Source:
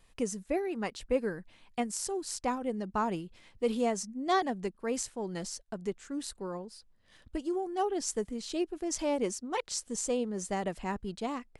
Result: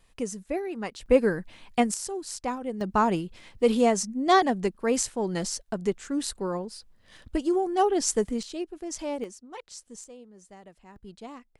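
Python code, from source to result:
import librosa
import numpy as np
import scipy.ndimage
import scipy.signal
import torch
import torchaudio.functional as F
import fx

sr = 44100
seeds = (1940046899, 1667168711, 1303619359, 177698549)

y = fx.gain(x, sr, db=fx.steps((0.0, 1.0), (1.06, 9.5), (1.94, 1.0), (2.81, 8.0), (8.43, -1.5), (9.24, -8.5), (10.04, -16.0), (10.96, -7.0)))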